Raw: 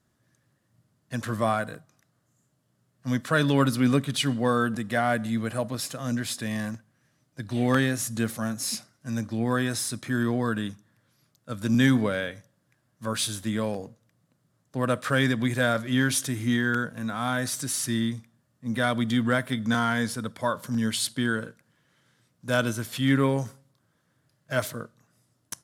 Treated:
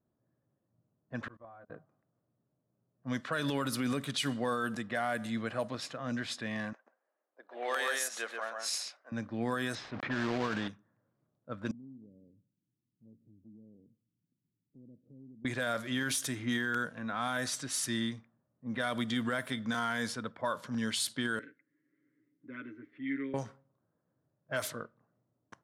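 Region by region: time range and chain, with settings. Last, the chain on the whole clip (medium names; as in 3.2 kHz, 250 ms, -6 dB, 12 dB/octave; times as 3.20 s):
1.28–1.70 s: gate -29 dBFS, range -22 dB + comb of notches 210 Hz + level held to a coarse grid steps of 23 dB
6.73–9.12 s: high-pass 480 Hz 24 dB/octave + delay 134 ms -3.5 dB
9.75–10.68 s: block-companded coder 3-bit + distance through air 170 m + decay stretcher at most 22 dB/s
11.71–15.45 s: inverse Chebyshev band-stop 950–8300 Hz, stop band 60 dB + bass shelf 290 Hz -7 dB + compression 2:1, threshold -54 dBFS
21.39–23.34 s: two resonant band-passes 800 Hz, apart 2.7 oct + comb 7.2 ms, depth 91% + three bands compressed up and down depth 40%
whole clip: bass shelf 240 Hz -11 dB; level-controlled noise filter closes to 610 Hz, open at -24.5 dBFS; peak limiter -21 dBFS; trim -2 dB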